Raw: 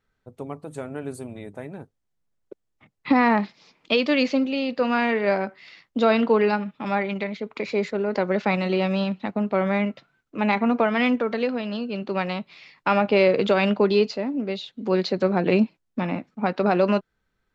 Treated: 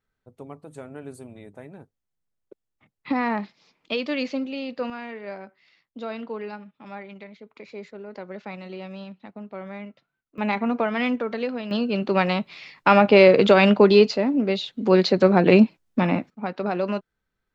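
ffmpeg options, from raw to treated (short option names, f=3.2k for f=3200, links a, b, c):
-af "asetnsamples=n=441:p=0,asendcmd='4.9 volume volume -14dB;10.38 volume volume -3dB;11.71 volume volume 5dB;16.3 volume volume -5.5dB',volume=-6dB"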